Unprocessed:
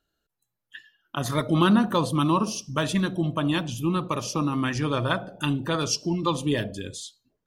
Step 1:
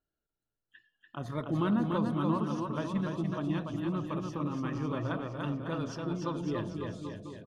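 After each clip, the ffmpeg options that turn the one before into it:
ffmpeg -i in.wav -filter_complex "[0:a]lowpass=frequency=1100:poles=1,asplit=2[link_01][link_02];[link_02]aecho=0:1:290|551|785.9|997.3|1188:0.631|0.398|0.251|0.158|0.1[link_03];[link_01][link_03]amix=inputs=2:normalize=0,volume=-9dB" out.wav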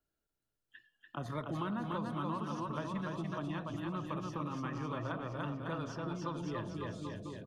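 ffmpeg -i in.wav -filter_complex "[0:a]acrossover=split=180|630|1900[link_01][link_02][link_03][link_04];[link_01]acompressor=threshold=-44dB:ratio=4[link_05];[link_02]acompressor=threshold=-45dB:ratio=4[link_06];[link_03]acompressor=threshold=-40dB:ratio=4[link_07];[link_04]acompressor=threshold=-55dB:ratio=4[link_08];[link_05][link_06][link_07][link_08]amix=inputs=4:normalize=0,volume=1dB" out.wav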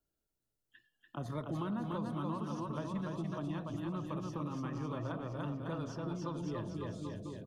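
ffmpeg -i in.wav -af "equalizer=frequency=1900:width_type=o:width=2.1:gain=-7,volume=1dB" out.wav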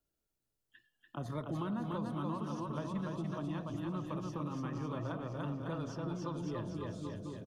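ffmpeg -i in.wav -af "aecho=1:1:523|1046|1569|2092|2615:0.119|0.0677|0.0386|0.022|0.0125" out.wav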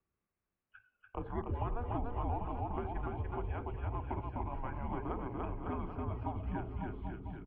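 ffmpeg -i in.wav -af "asubboost=boost=10:cutoff=55,highpass=frequency=170:width_type=q:width=0.5412,highpass=frequency=170:width_type=q:width=1.307,lowpass=frequency=2600:width_type=q:width=0.5176,lowpass=frequency=2600:width_type=q:width=0.7071,lowpass=frequency=2600:width_type=q:width=1.932,afreqshift=-240,volume=4.5dB" out.wav

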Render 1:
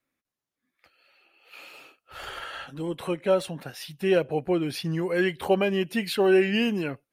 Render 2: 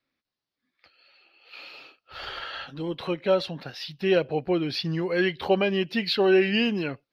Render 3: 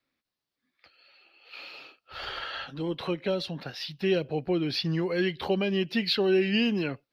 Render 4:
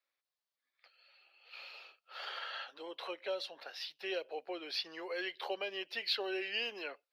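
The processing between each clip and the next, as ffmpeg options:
ffmpeg -i in.wav -af "highshelf=frequency=6200:width_type=q:width=3:gain=-11.5" out.wav
ffmpeg -i in.wav -filter_complex "[0:a]acrossover=split=360|3000[link_01][link_02][link_03];[link_02]acompressor=threshold=-31dB:ratio=6[link_04];[link_01][link_04][link_03]amix=inputs=3:normalize=0" out.wav
ffmpeg -i in.wav -af "highpass=frequency=490:width=0.5412,highpass=frequency=490:width=1.3066,volume=-6.5dB" out.wav

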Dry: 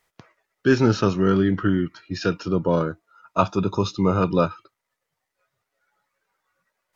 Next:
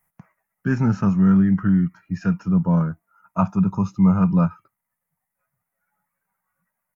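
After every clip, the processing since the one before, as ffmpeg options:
ffmpeg -i in.wav -af "firequalizer=gain_entry='entry(110,0);entry(180,9);entry(330,-13);entry(500,-11);entry(780,-1);entry(1300,-5);entry(2100,-5);entry(3600,-26);entry(6000,-11);entry(11000,7)':delay=0.05:min_phase=1" out.wav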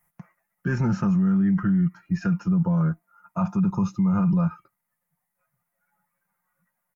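ffmpeg -i in.wav -af "aecho=1:1:5.7:0.51,alimiter=limit=-16dB:level=0:latency=1:release=11" out.wav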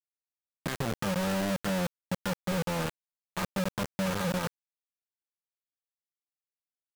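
ffmpeg -i in.wav -af "acompressor=threshold=-41dB:ratio=2,acrusher=bits=4:mix=0:aa=0.000001" out.wav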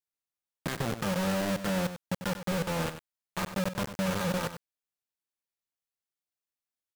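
ffmpeg -i in.wav -af "aecho=1:1:95:0.282" out.wav

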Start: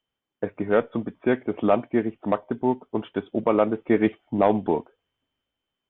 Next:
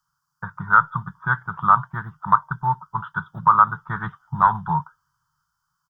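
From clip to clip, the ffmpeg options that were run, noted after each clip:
ffmpeg -i in.wav -af "firequalizer=gain_entry='entry(110,0);entry(150,13);entry(240,-29);entry(440,-29);entry(640,-22);entry(940,10);entry(1400,15);entry(2300,-29);entry(4800,14);entry(8200,8)':delay=0.05:min_phase=1,volume=4dB" out.wav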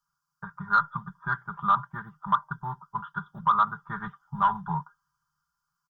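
ffmpeg -i in.wav -af "aecho=1:1:5:0.68,asoftclip=type=tanh:threshold=-2dB,volume=-8dB" out.wav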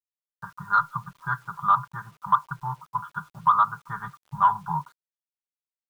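ffmpeg -i in.wav -af "equalizer=frequency=125:width_type=o:width=1:gain=9,equalizer=frequency=250:width_type=o:width=1:gain=-11,equalizer=frequency=1000:width_type=o:width=1:gain=8,acrusher=bits=8:mix=0:aa=0.000001,volume=-3.5dB" out.wav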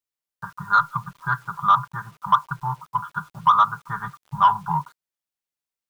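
ffmpeg -i in.wav -af "asoftclip=type=tanh:threshold=-10dB,volume=4.5dB" out.wav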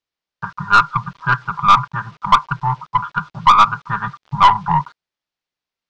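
ffmpeg -i in.wav -af "lowpass=frequency=5300:width=0.5412,lowpass=frequency=5300:width=1.3066,aeval=exprs='(tanh(3.98*val(0)+0.35)-tanh(0.35))/3.98':channel_layout=same,volume=9dB" out.wav

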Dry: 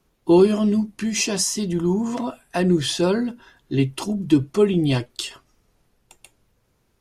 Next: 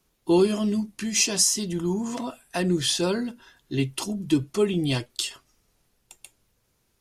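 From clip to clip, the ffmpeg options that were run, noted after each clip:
ffmpeg -i in.wav -af "highshelf=frequency=2700:gain=9,volume=-5.5dB" out.wav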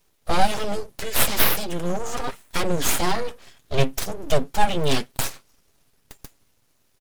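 ffmpeg -i in.wav -af "aecho=1:1:7.3:0.49,aeval=exprs='abs(val(0))':channel_layout=same,volume=5dB" out.wav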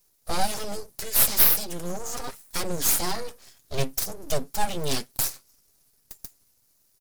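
ffmpeg -i in.wav -af "aexciter=amount=2.1:drive=8.1:freq=4400,volume=-7dB" out.wav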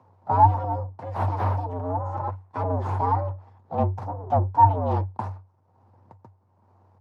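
ffmpeg -i in.wav -af "acompressor=mode=upward:threshold=-38dB:ratio=2.5,lowpass=frequency=820:width_type=q:width=4.6,afreqshift=94" out.wav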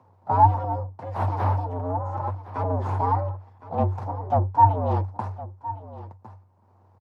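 ffmpeg -i in.wav -af "aecho=1:1:1063:0.158" out.wav

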